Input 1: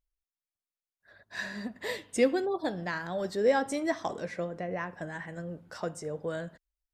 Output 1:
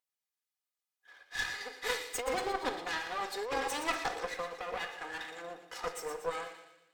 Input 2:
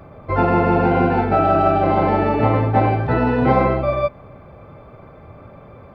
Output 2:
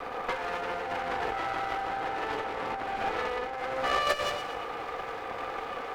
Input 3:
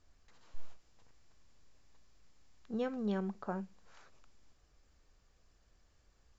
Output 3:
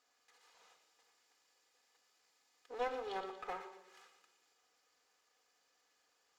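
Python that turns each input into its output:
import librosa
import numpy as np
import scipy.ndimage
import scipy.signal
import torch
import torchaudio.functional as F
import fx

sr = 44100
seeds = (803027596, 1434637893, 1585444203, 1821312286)

p1 = fx.lower_of_two(x, sr, delay_ms=2.4)
p2 = p1 + fx.echo_wet_highpass(p1, sr, ms=118, feedback_pct=49, hz=2100.0, wet_db=-8, dry=0)
p3 = fx.room_shoebox(p2, sr, seeds[0], volume_m3=2900.0, walls='furnished', distance_m=1.9)
p4 = fx.over_compress(p3, sr, threshold_db=-28.0, ratio=-1.0)
p5 = scipy.signal.sosfilt(scipy.signal.butter(2, 580.0, 'highpass', fs=sr, output='sos'), p4)
y = fx.cheby_harmonics(p5, sr, harmonics=(8,), levels_db=(-20,), full_scale_db=-13.0)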